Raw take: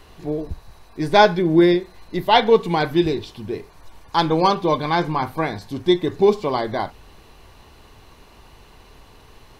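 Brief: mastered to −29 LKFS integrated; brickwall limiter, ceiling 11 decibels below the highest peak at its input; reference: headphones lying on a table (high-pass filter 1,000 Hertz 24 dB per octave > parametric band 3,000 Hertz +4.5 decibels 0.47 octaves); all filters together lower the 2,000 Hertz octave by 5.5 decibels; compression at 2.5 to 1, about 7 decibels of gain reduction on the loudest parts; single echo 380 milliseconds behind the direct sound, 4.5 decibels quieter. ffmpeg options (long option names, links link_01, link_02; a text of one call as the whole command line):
ffmpeg -i in.wav -af "equalizer=frequency=2000:width_type=o:gain=-8.5,acompressor=threshold=-20dB:ratio=2.5,alimiter=limit=-20dB:level=0:latency=1,highpass=frequency=1000:width=0.5412,highpass=frequency=1000:width=1.3066,equalizer=frequency=3000:width_type=o:width=0.47:gain=4.5,aecho=1:1:380:0.596,volume=9.5dB" out.wav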